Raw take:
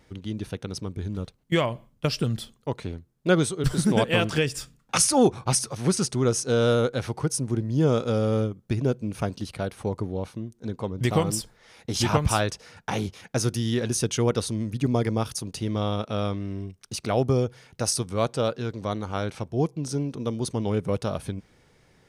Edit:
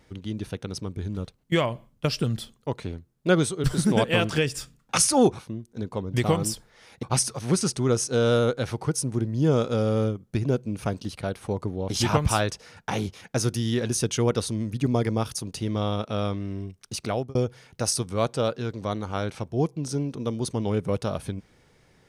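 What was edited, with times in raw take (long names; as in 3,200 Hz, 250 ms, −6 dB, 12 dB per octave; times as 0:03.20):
0:10.26–0:11.90: move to 0:05.39
0:17.05–0:17.35: fade out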